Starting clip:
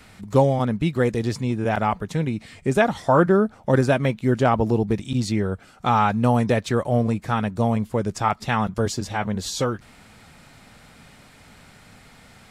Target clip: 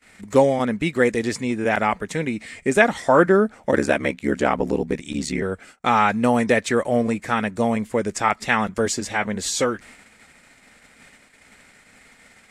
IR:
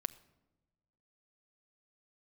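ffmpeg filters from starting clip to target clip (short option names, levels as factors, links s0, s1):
-filter_complex "[0:a]equalizer=f=125:t=o:w=1:g=-7,equalizer=f=250:t=o:w=1:g=5,equalizer=f=500:t=o:w=1:g=5,equalizer=f=2000:t=o:w=1:g=12,equalizer=f=8000:t=o:w=1:g=11,agate=range=0.0562:threshold=0.00891:ratio=16:detection=peak,asplit=3[s0][s1][s2];[s0]afade=t=out:st=3.71:d=0.02[s3];[s1]aeval=exprs='val(0)*sin(2*PI*36*n/s)':c=same,afade=t=in:st=3.71:d=0.02,afade=t=out:st=5.41:d=0.02[s4];[s2]afade=t=in:st=5.41:d=0.02[s5];[s3][s4][s5]amix=inputs=3:normalize=0,volume=0.708"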